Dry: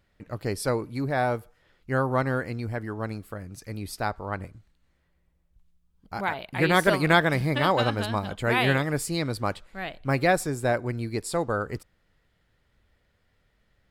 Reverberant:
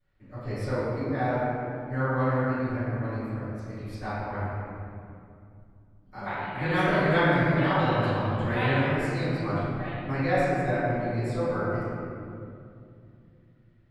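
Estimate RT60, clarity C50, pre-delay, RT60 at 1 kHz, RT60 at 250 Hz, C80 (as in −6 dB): 2.5 s, −5.0 dB, 3 ms, 2.2 s, 3.9 s, −2.5 dB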